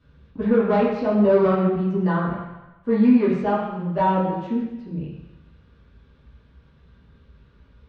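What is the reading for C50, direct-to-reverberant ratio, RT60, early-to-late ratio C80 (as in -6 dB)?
2.5 dB, -10.5 dB, 1.0 s, 4.5 dB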